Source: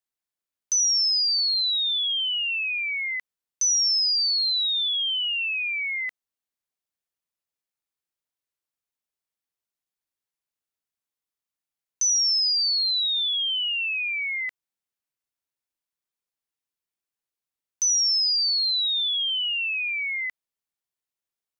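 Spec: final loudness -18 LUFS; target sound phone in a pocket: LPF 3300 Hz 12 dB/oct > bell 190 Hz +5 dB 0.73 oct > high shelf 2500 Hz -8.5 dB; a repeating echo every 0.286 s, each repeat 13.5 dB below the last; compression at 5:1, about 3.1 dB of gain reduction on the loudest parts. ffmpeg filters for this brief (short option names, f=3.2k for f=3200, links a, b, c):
-af "acompressor=threshold=-24dB:ratio=5,lowpass=3.3k,equalizer=f=190:t=o:w=0.73:g=5,highshelf=f=2.5k:g=-8.5,aecho=1:1:286|572:0.211|0.0444,volume=15dB"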